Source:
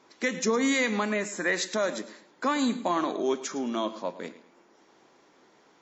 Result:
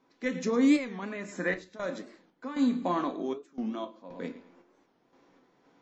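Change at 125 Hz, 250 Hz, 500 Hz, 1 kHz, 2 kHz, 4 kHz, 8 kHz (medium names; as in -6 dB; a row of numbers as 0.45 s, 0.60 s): -0.5 dB, +1.0 dB, -5.0 dB, -5.5 dB, -7.0 dB, -10.5 dB, no reading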